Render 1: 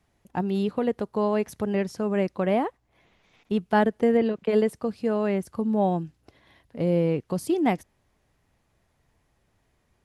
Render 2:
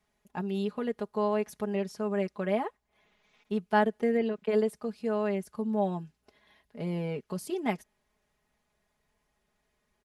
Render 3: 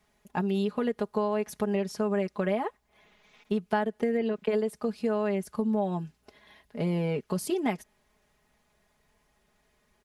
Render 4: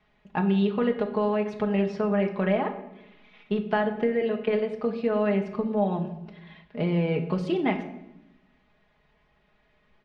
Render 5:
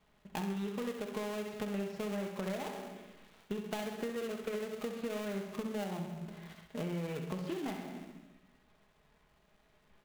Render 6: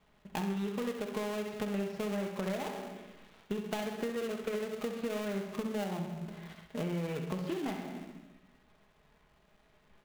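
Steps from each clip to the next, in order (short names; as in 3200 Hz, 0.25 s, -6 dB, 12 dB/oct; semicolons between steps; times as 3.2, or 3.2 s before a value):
low shelf 380 Hz -6 dB; comb 4.8 ms, depth 72%; gain -6 dB
compressor 6:1, threshold -31 dBFS, peak gain reduction 12 dB; gain +7 dB
ladder low-pass 4000 Hz, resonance 25%; shoebox room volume 280 m³, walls mixed, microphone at 0.56 m; gain +8 dB
switching dead time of 0.25 ms; compressor 4:1, threshold -35 dBFS, peak gain reduction 13.5 dB; thinning echo 66 ms, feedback 60%, level -8 dB; gain -2 dB
median filter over 5 samples; gain +2.5 dB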